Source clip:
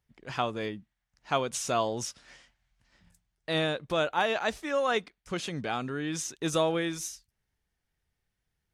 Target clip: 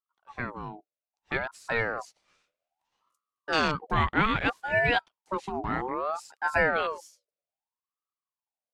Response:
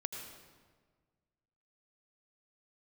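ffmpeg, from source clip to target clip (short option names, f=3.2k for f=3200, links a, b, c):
-af "afwtdn=0.0224,dynaudnorm=f=340:g=11:m=7dB,aeval=exprs='val(0)*sin(2*PI*870*n/s+870*0.4/0.62*sin(2*PI*0.62*n/s))':c=same,volume=-1dB"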